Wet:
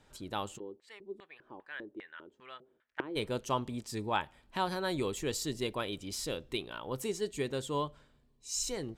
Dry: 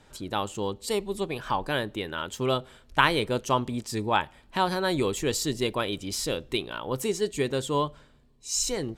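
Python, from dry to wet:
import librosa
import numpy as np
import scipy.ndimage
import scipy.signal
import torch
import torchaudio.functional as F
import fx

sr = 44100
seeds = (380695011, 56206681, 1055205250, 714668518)

y = fx.filter_lfo_bandpass(x, sr, shape='square', hz=2.5, low_hz=350.0, high_hz=1800.0, q=3.6, at=(0.57, 3.15), fade=0.02)
y = y * 10.0 ** (-7.5 / 20.0)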